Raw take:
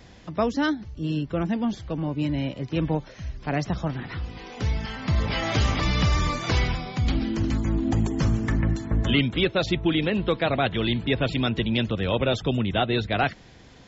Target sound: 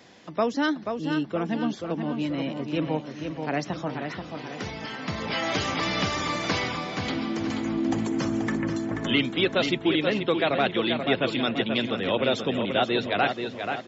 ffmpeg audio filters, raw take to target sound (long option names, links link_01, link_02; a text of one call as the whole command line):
ffmpeg -i in.wav -filter_complex "[0:a]highpass=230,asplit=2[link_01][link_02];[link_02]adelay=483,lowpass=frequency=4200:poles=1,volume=-6dB,asplit=2[link_03][link_04];[link_04]adelay=483,lowpass=frequency=4200:poles=1,volume=0.48,asplit=2[link_05][link_06];[link_06]adelay=483,lowpass=frequency=4200:poles=1,volume=0.48,asplit=2[link_07][link_08];[link_08]adelay=483,lowpass=frequency=4200:poles=1,volume=0.48,asplit=2[link_09][link_10];[link_10]adelay=483,lowpass=frequency=4200:poles=1,volume=0.48,asplit=2[link_11][link_12];[link_12]adelay=483,lowpass=frequency=4200:poles=1,volume=0.48[link_13];[link_03][link_05][link_07][link_09][link_11][link_13]amix=inputs=6:normalize=0[link_14];[link_01][link_14]amix=inputs=2:normalize=0" out.wav